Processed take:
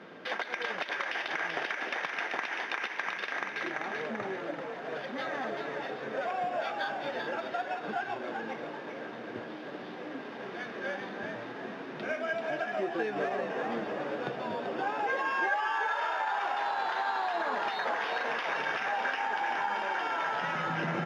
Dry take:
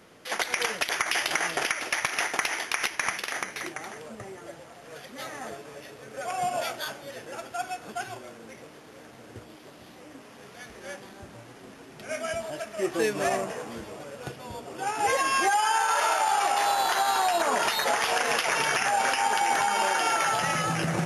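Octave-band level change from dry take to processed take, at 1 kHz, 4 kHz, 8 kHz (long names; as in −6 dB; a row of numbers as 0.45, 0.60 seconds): −5.5 dB, −9.5 dB, below −20 dB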